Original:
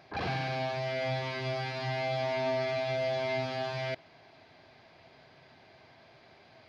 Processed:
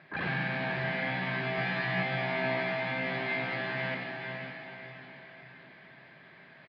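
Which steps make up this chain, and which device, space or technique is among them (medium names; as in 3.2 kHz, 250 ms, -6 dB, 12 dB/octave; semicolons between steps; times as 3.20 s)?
peaking EQ 1.7 kHz +4.5 dB 0.5 oct; frequency-shifting delay pedal into a guitar cabinet (frequency-shifting echo 93 ms, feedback 51%, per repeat +56 Hz, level -8 dB; cabinet simulation 110–3500 Hz, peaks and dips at 110 Hz -9 dB, 160 Hz +9 dB, 450 Hz -5 dB, 750 Hz -8 dB, 1.8 kHz +5 dB); 1.57–2.03 s: comb 6 ms, depth 82%; echo that smears into a reverb 498 ms, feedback 46%, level -5 dB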